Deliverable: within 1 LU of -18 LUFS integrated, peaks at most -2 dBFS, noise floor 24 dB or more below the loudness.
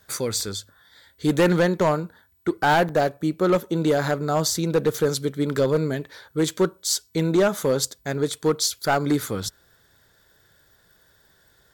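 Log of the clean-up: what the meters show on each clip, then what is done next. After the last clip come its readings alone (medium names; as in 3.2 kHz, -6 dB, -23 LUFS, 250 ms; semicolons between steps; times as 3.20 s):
clipped samples 1.1%; clipping level -13.5 dBFS; dropouts 2; longest dropout 1.5 ms; loudness -23.0 LUFS; peak level -13.5 dBFS; loudness target -18.0 LUFS
-> clip repair -13.5 dBFS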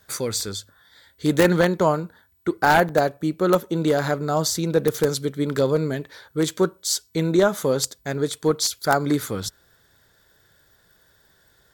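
clipped samples 0.0%; dropouts 2; longest dropout 1.5 ms
-> interpolate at 0.40/2.89 s, 1.5 ms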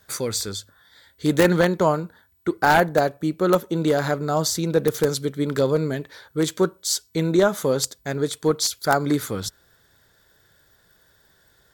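dropouts 0; loudness -22.5 LUFS; peak level -4.5 dBFS; loudness target -18.0 LUFS
-> trim +4.5 dB; peak limiter -2 dBFS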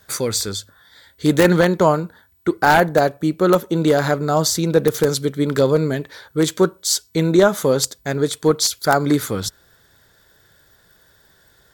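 loudness -18.0 LUFS; peak level -2.0 dBFS; noise floor -56 dBFS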